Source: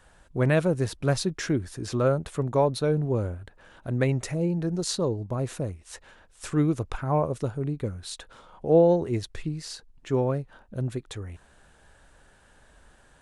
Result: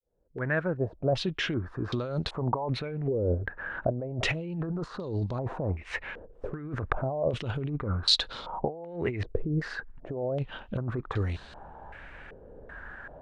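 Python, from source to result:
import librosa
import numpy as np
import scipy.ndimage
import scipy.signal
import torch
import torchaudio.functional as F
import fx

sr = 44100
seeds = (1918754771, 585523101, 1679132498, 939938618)

y = fx.fade_in_head(x, sr, length_s=3.79)
y = fx.over_compress(y, sr, threshold_db=-34.0, ratio=-1.0)
y = fx.filter_held_lowpass(y, sr, hz=2.6, low_hz=470.0, high_hz=4200.0)
y = y * librosa.db_to_amplitude(2.0)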